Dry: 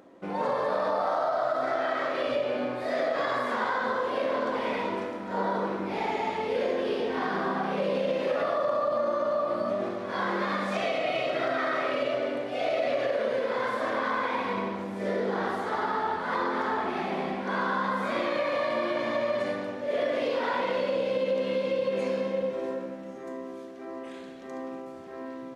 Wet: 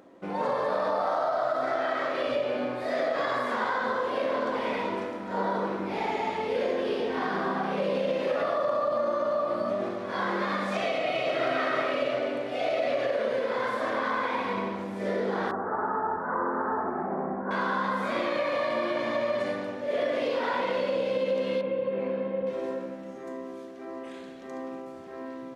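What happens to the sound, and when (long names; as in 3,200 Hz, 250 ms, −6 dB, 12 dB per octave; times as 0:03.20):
0:10.88–0:11.45: delay throw 370 ms, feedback 50%, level −5.5 dB
0:15.51–0:17.51: Butterworth low-pass 1,600 Hz 48 dB per octave
0:21.61–0:22.47: high-frequency loss of the air 500 metres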